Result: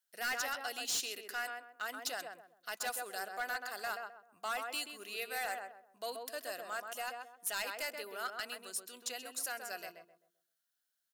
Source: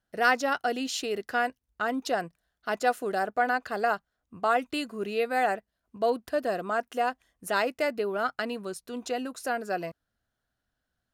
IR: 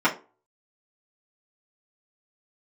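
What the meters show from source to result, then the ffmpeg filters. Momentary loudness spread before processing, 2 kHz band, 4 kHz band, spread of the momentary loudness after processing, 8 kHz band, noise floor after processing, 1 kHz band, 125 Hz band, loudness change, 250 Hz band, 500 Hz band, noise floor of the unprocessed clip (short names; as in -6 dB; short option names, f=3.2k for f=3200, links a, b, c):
8 LU, -8.5 dB, -2.5 dB, 9 LU, +2.5 dB, -84 dBFS, -13.5 dB, under -20 dB, -10.0 dB, -22.5 dB, -16.5 dB, -83 dBFS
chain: -filter_complex "[0:a]aderivative,asplit=2[a][b];[b]adelay=130,lowpass=f=1.2k:p=1,volume=-3.5dB,asplit=2[c][d];[d]adelay=130,lowpass=f=1.2k:p=1,volume=0.35,asplit=2[e][f];[f]adelay=130,lowpass=f=1.2k:p=1,volume=0.35,asplit=2[g][h];[h]adelay=130,lowpass=f=1.2k:p=1,volume=0.35,asplit=2[i][j];[j]adelay=130,lowpass=f=1.2k:p=1,volume=0.35[k];[a][c][e][g][i][k]amix=inputs=6:normalize=0,volume=35.5dB,asoftclip=hard,volume=-35.5dB,volume=4.5dB"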